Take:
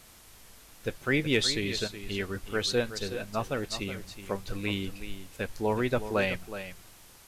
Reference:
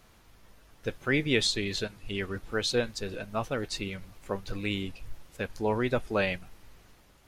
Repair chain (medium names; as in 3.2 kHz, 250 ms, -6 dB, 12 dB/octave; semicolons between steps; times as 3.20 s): clip repair -15 dBFS; noise reduction 6 dB, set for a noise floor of -53 dBFS; inverse comb 370 ms -11.5 dB